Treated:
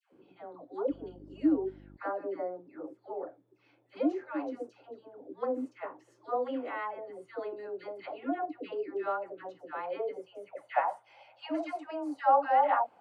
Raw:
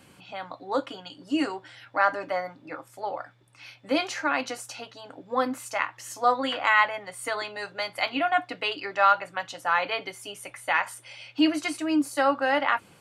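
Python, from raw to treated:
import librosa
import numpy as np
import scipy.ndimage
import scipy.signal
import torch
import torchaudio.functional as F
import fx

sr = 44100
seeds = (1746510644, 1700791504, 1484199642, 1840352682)

y = fx.dispersion(x, sr, late='lows', ms=128.0, hz=890.0)
y = fx.filter_sweep_bandpass(y, sr, from_hz=370.0, to_hz=770.0, start_s=9.75, end_s=10.99, q=3.9)
y = fx.dmg_buzz(y, sr, base_hz=50.0, harmonics=7, level_db=-58.0, tilt_db=-2, odd_only=False, at=(0.89, 1.96), fade=0.02)
y = F.gain(torch.from_numpy(y), 5.0).numpy()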